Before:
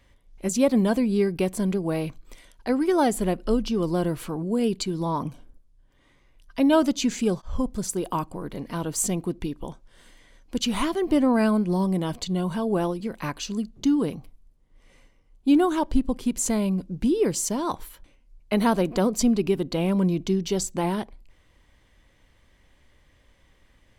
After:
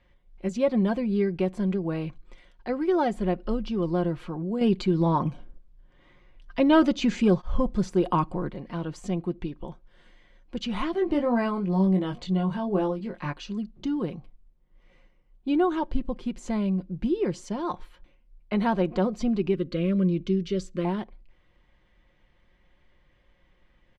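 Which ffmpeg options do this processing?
-filter_complex "[0:a]asettb=1/sr,asplit=3[a][b][c];[a]atrim=end=4.614[d];[b]atrim=start=4.61:end=8.5,asetpts=PTS-STARTPTS,afade=t=in:d=0.004:c=qsin,afade=t=out:st=3.886:d=0.004:c=qsin,acontrast=69[e];[c]atrim=start=8.496[f];[d][e]acrossfade=d=0.004:c1=hsin:c2=qsin[g];[g][f]acrossfade=d=0.004:c1=qsin:c2=hsin,asettb=1/sr,asplit=3[h][i][j];[h]atrim=end=10.924[k];[i]atrim=start=10.92:end=13.33,asetpts=PTS-STARTPTS,afade=t=in:d=0.004:c=qsin,afade=t=out:st=2.406:d=0.004:c=qsin,asplit=2[l][m];[m]adelay=21,volume=-5dB[n];[l][n]amix=inputs=2:normalize=0,atrim=end_sample=106281[o];[j]atrim=start=13.326[p];[k][o]acrossfade=d=0.004:c1=hsin:c2=qsin[q];[q][p]acrossfade=d=0.004:c1=qsin:c2=hsin,asettb=1/sr,asplit=3[r][s][t];[r]atrim=end=19.544[u];[s]atrim=start=19.54:end=20.85,asetpts=PTS-STARTPTS,afade=t=in:d=0.004:c=qsin,afade=t=out:st=1.306:d=0.004:c=qsin,asuperstop=centerf=830:order=8:qfactor=1.8[v];[t]atrim=start=20.846[w];[u][v]acrossfade=d=0.004:c1=hsin:c2=qsin[x];[x][w]acrossfade=d=0.004:c1=qsin:c2=hsin,deesser=0.45,lowpass=3.3k,aecho=1:1:5.6:0.45,volume=-4dB"

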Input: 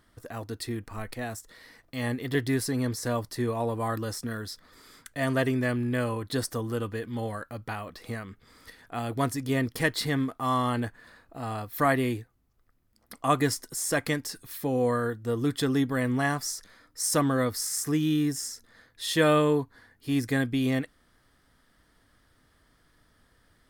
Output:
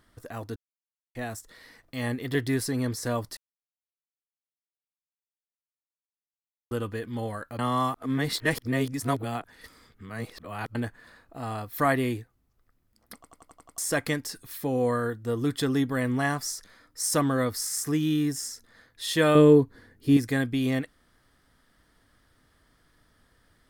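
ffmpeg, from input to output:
-filter_complex "[0:a]asettb=1/sr,asplit=3[a][b][c];[a]atrim=end=19.354[d];[b]atrim=start=19.35:end=20.17,asetpts=PTS-STARTPTS,afade=t=in:d=0.004:c=qsin,afade=t=out:st=0.816:d=0.004:c=qsin,lowshelf=f=580:t=q:w=1.5:g=7[e];[c]atrim=start=20.166[f];[d][e]acrossfade=d=0.004:c1=hsin:c2=qsin[g];[g][f]acrossfade=d=0.004:c1=qsin:c2=hsin,asplit=14[h][i][j][k][l][m][n][o][p][q][r][s][t][u];[h]atrim=end=0.56,asetpts=PTS-STARTPTS,afade=t=out:st=0.556:d=0.004:c=hsin[v];[i]atrim=start=0.56:end=1.15,asetpts=PTS-STARTPTS,volume=0[w];[j]atrim=start=1.15:end=3.37,asetpts=PTS-STARTPTS,afade=t=in:d=0.004:c=hsin,afade=t=out:st=2.216:d=0.004:c=hsin[x];[k]atrim=start=3.37:end=6.71,asetpts=PTS-STARTPTS,volume=0[y];[l]atrim=start=6.71:end=7.592,asetpts=PTS-STARTPTS,afade=t=in:d=0.004:c=hsin[z];[m]atrim=start=7.588:end=10.752,asetpts=PTS-STARTPTS,areverse[aa];[n]atrim=start=10.748:end=13.242[ab];[o]atrim=start=13.148:end=13.242[ac];[p]atrim=start=13.148:end=13.242[ad];[q]atrim=start=13.148:end=13.242[ae];[r]atrim=start=13.148:end=13.242[af];[s]atrim=start=13.148:end=13.242[ag];[t]atrim=start=13.148:end=13.242[ah];[u]atrim=start=13.778[ai];[v][w][x][y][z]concat=n=5:v=0:a=1[aj];[aj][aa]acrossfade=d=0.004:c1=hsin:c2=hsin[ak];[ak][ab]acrossfade=d=0.004:c1=hsin:c2=hsin[al];[al][ac]acrossfade=d=0.004:c1=hsin:c2=hsin[am];[am][ad]acrossfade=d=0.004:c1=hsin:c2=hsin[an];[an][ae]acrossfade=d=0.004:c1=hsin:c2=hsin[ao];[ao][af]acrossfade=d=0.004:c1=hsin:c2=hsin[ap];[ap][ag]acrossfade=d=0.004:c1=hsin:c2=hsin[aq];[aq][ah]acrossfade=d=0.004:c1=hsin:c2=hsin[ar];[ar][ai]acrossfade=d=0.004:c1=hsin:c2=hsin"

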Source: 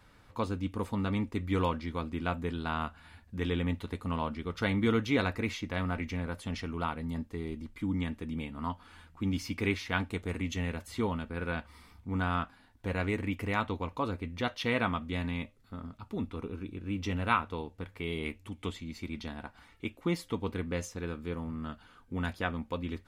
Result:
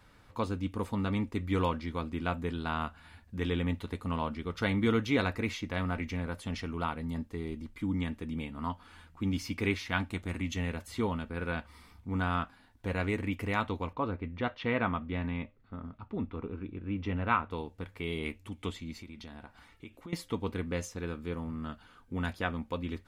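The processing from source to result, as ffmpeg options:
-filter_complex "[0:a]asettb=1/sr,asplit=3[a][b][c];[a]atrim=end=9.884[d];[b]atrim=start=9.88:end=10.56,asetpts=PTS-STARTPTS,afade=t=in:d=0.004:c=qsin,afade=t=out:st=0.676:d=0.004:c=qsin,equalizer=f=440:w=6.6:g=-11[e];[c]atrim=start=10.556[f];[d][e]acrossfade=d=0.004:c1=hsin:c2=qsin[g];[g][f]acrossfade=d=0.004:c1=qsin:c2=hsin,asettb=1/sr,asplit=3[h][i][j];[h]atrim=end=13.934[k];[i]atrim=start=13.93:end=17.51,asetpts=PTS-STARTPTS,afade=t=in:d=0.004:c=qsin,afade=t=out:st=3.576:d=0.004:c=qsin,lowpass=2.4k[l];[j]atrim=start=17.506[m];[k][l]acrossfade=d=0.004:c1=hsin:c2=qsin[n];[n][m]acrossfade=d=0.004:c1=qsin:c2=hsin,asettb=1/sr,asplit=3[o][p][q];[o]atrim=end=19.014[r];[p]atrim=start=19.01:end=20.13,asetpts=PTS-STARTPTS,afade=t=in:d=0.004:c=qsin,afade=t=out:st=1.116:d=0.004:c=qsin,acompressor=threshold=-43dB:ratio=5:attack=3.2:release=140:knee=1:detection=peak[s];[q]atrim=start=20.126[t];[r][s]acrossfade=d=0.004:c1=hsin:c2=qsin[u];[u][t]acrossfade=d=0.004:c1=qsin:c2=hsin"

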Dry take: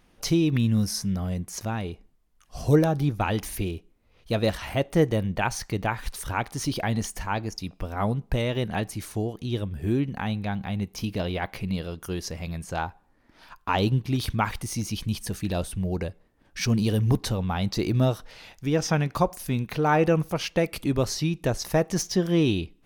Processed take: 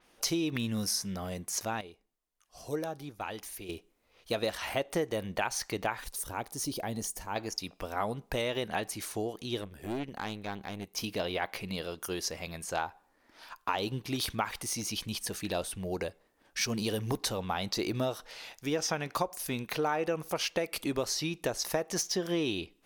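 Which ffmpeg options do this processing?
-filter_complex "[0:a]asettb=1/sr,asplit=3[a][b][c];[a]atrim=end=6.044[d];[b]atrim=start=6.04:end=7.36,asetpts=PTS-STARTPTS,afade=t=in:d=0.004:c=qsin,afade=t=out:st=1.316:d=0.004:c=qsin,equalizer=f=2k:w=0.38:g=-12[e];[c]atrim=start=7.356[f];[d][e]acrossfade=d=0.004:c1=hsin:c2=qsin[g];[g][f]acrossfade=d=0.004:c1=qsin:c2=hsin,asettb=1/sr,asplit=3[h][i][j];[h]atrim=end=9.614[k];[i]atrim=start=9.61:end=10.97,asetpts=PTS-STARTPTS,afade=t=in:d=0.004:c=qsin,afade=t=out:st=1.356:d=0.004:c=qsin,aeval=exprs='(tanh(15.8*val(0)+0.75)-tanh(0.75))/15.8':c=same[l];[j]atrim=start=10.966[m];[k][l]acrossfade=d=0.004:c1=hsin:c2=qsin[n];[n][m]acrossfade=d=0.004:c1=qsin:c2=hsin,asplit=3[o][p][q];[o]atrim=end=1.812[r];[p]atrim=start=1.808:end=3.692,asetpts=PTS-STARTPTS,volume=-10.5dB[s];[q]atrim=start=3.688[t];[r][s]acrossfade=d=0.004:c1=hsin:c2=hsin[u];[u][t]acrossfade=d=0.004:c1=hsin:c2=hsin,bass=f=250:g=-14,treble=f=4k:g=4,acompressor=threshold=-27dB:ratio=6,adynamicequalizer=threshold=0.00562:dfrequency=5200:dqfactor=0.7:tfrequency=5200:tqfactor=0.7:attack=5:release=100:ratio=0.375:range=2:mode=cutabove:tftype=highshelf"

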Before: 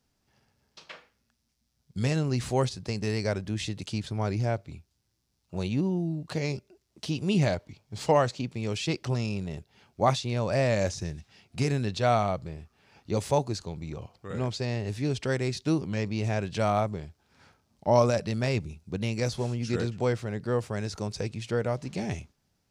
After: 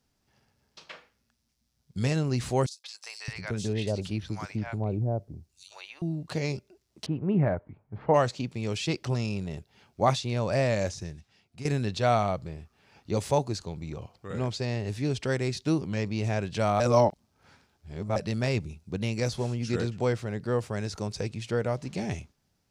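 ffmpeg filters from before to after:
-filter_complex "[0:a]asettb=1/sr,asplit=3[a][b][c];[a]atrim=end=2.664[d];[b]atrim=start=2.66:end=6.02,asetpts=PTS-STARTPTS,afade=t=in:d=0.004:c=qsin,afade=t=out:st=3.356:d=0.004:c=qsin,acrossover=split=850|4100[e][f][g];[f]adelay=180[h];[e]adelay=620[i];[i][h][g]amix=inputs=3:normalize=0,atrim=end_sample=148176[j];[c]atrim=start=6.016[k];[d][j]acrossfade=d=0.004:c1=hsin:c2=qsin[l];[l][k]acrossfade=d=0.004:c1=qsin:c2=hsin,asettb=1/sr,asplit=3[m][n][o];[m]atrim=end=7.064[p];[n]atrim=start=7.06:end=8.14,asetpts=PTS-STARTPTS,afade=t=in:d=0.004:c=qsin,afade=t=out:st=1.076:d=0.004:c=qsin,lowpass=f=1.7k:w=0.5412,lowpass=f=1.7k:w=1.3066[q];[o]atrim=start=8.136[r];[p][q]acrossfade=d=0.004:c1=hsin:c2=qsin[s];[s][r]acrossfade=d=0.004:c1=qsin:c2=hsin,asplit=4[t][u][v][w];[t]atrim=end=11.65,asetpts=PTS-STARTPTS,afade=t=out:st=10.57:d=1.08:silence=0.211349[x];[u]atrim=start=11.65:end=16.802,asetpts=PTS-STARTPTS,afade=t=in:d=0.004:c=hsin:silence=0.211349[y];[v]atrim=start=16.798:end=18.162,asetpts=PTS-STARTPTS,areverse[z];[w]atrim=start=18.158[aa];[x][y]concat=n=2:v=0:a=1[ab];[ab][z]acrossfade=d=0.004:c1=hsin:c2=hsin[ac];[ac][aa]acrossfade=d=0.004:c1=hsin:c2=hsin"

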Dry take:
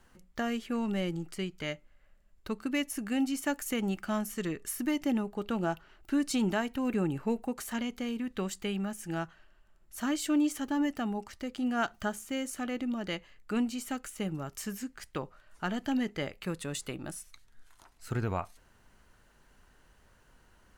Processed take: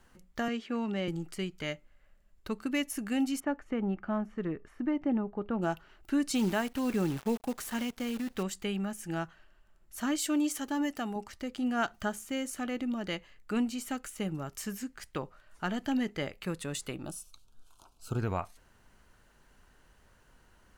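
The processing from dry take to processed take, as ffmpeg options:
-filter_complex "[0:a]asettb=1/sr,asplit=3[a][b][c];[a]atrim=end=0.484[d];[b]atrim=start=0.48:end=1.08,asetpts=PTS-STARTPTS,afade=t=in:d=0.004:c=qsin,afade=t=out:st=0.596:d=0.004:c=qsin,acrossover=split=150 6500:gain=0.0794 1 0.1[e][f][g];[e][f][g]amix=inputs=3:normalize=0[h];[c]atrim=start=1.076[i];[d][h]acrossfade=d=0.004:c1=hsin:c2=qsin[j];[j][i]acrossfade=d=0.004:c1=qsin:c2=hsin,asettb=1/sr,asplit=3[k][l][m];[k]atrim=end=3.404[n];[l]atrim=start=3.4:end=5.62,asetpts=PTS-STARTPTS,afade=t=in:d=0.004:c=qsin,afade=t=out:st=2.216:d=0.004:c=qsin,lowpass=1.4k[o];[m]atrim=start=5.616[p];[n][o]acrossfade=d=0.004:c1=hsin:c2=qsin[q];[q][p]acrossfade=d=0.004:c1=qsin:c2=hsin,asettb=1/sr,asplit=3[r][s][t];[r]atrim=end=6.354[u];[s]atrim=start=6.35:end=8.43,asetpts=PTS-STARTPTS,afade=t=in:d=0.004:c=qsin,afade=t=out:st=2.076:d=0.004:c=qsin,acrusher=bits=8:dc=4:mix=0:aa=0.000001[v];[t]atrim=start=8.426[w];[u][v]acrossfade=d=0.004:c1=hsin:c2=qsin[x];[x][w]acrossfade=d=0.004:c1=qsin:c2=hsin,asettb=1/sr,asplit=3[y][z][aa];[y]atrim=end=10.184[ab];[z]atrim=start=10.18:end=11.16,asetpts=PTS-STARTPTS,afade=t=in:d=0.004:c=qsin,afade=t=out:st=0.976:d=0.004:c=qsin,bass=f=250:g=-6,treble=f=4k:g=4[ac];[aa]atrim=start=11.156[ad];[ab][ac]acrossfade=d=0.004:c1=hsin:c2=qsin[ae];[ae][ad]acrossfade=d=0.004:c1=qsin:c2=hsin,asplit=3[af][ag][ah];[af]afade=t=out:st=17.05:d=0.02[ai];[ag]asuperstop=centerf=1900:order=4:qfactor=1.5,afade=t=in:st=17.05:d=0.02,afade=t=out:st=18.18:d=0.02[aj];[ah]afade=t=in:st=18.18:d=0.02[ak];[ai][aj][ak]amix=inputs=3:normalize=0"

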